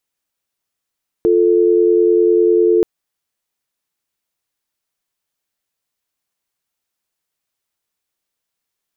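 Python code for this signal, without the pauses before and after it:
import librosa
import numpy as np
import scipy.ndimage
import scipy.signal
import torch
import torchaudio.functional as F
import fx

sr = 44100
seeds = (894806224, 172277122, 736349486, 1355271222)

y = fx.call_progress(sr, length_s=1.58, kind='dial tone', level_db=-12.0)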